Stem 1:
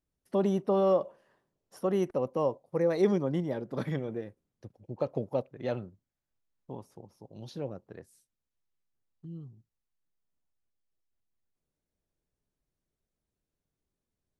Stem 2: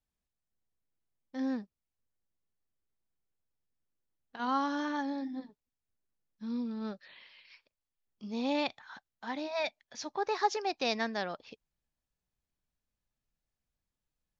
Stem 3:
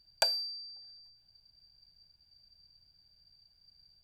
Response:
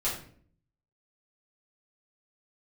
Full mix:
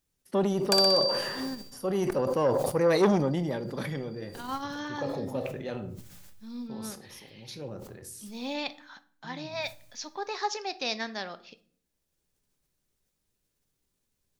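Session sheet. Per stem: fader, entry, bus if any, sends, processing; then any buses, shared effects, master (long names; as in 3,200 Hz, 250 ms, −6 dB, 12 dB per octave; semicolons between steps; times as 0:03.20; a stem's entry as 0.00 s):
+2.5 dB, 0.00 s, send −21 dB, no echo send, notch filter 680 Hz, Q 12; level that may fall only so fast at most 34 dB per second; automatic ducking −9 dB, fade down 1.25 s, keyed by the second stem
−4.0 dB, 0.00 s, send −17.5 dB, no echo send, no processing
−4.5 dB, 0.50 s, send −16.5 dB, echo send −4 dB, no processing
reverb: on, RT60 0.55 s, pre-delay 4 ms
echo: repeating echo 61 ms, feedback 57%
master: high-shelf EQ 2,400 Hz +8.5 dB; saturating transformer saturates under 750 Hz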